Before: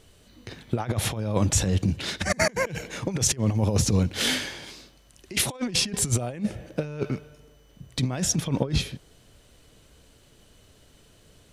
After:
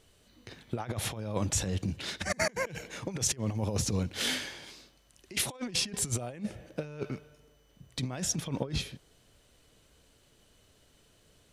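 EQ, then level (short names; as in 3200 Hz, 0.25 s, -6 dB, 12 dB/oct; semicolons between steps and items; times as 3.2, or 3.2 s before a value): low shelf 330 Hz -3.5 dB; -6.0 dB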